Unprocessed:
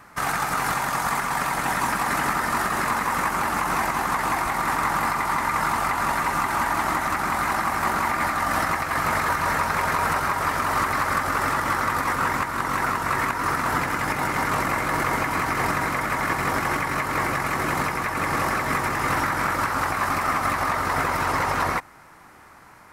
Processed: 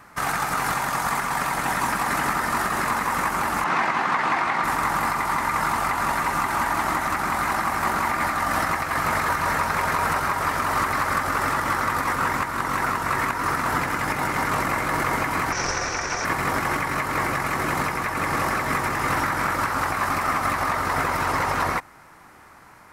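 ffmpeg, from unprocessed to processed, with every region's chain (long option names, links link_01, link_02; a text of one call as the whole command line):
ffmpeg -i in.wav -filter_complex "[0:a]asettb=1/sr,asplit=3[link_01][link_02][link_03];[link_01]atrim=end=3.644[link_04];[link_02]atrim=start=3.64:end=4.64,asetpts=PTS-STARTPTS,afade=type=in:duration=0.004:curve=qsin,afade=type=out:start_time=0.996:duration=0.004:curve=qsin,highpass=140,lowpass=3000,highshelf=frequency=2200:gain=9[link_05];[link_03]atrim=start=4.636[link_06];[link_04][link_05]acrossfade=duration=0.004:curve1=hsin:curve2=qsin[link_07];[link_07][link_06]acrossfade=duration=0.004:curve1=qsin:curve2=hsin,asettb=1/sr,asplit=3[link_08][link_09][link_10];[link_08]atrim=end=15.524[link_11];[link_09]atrim=start=15.52:end=16.25,asetpts=PTS-STARTPTS,afade=type=in:duration=0.004:curve=qsin,afade=type=out:start_time=0.726:duration=0.004:curve=qsin,aeval=exprs='val(0)*sin(2*PI*230*n/s)':channel_layout=same,lowpass=frequency=5800:width_type=q:width=11[link_12];[link_10]atrim=start=16.246[link_13];[link_11][link_12]acrossfade=duration=0.004:curve1=hsin:curve2=qsin[link_14];[link_14][link_13]acrossfade=duration=0.004:curve1=qsin:curve2=hsin" out.wav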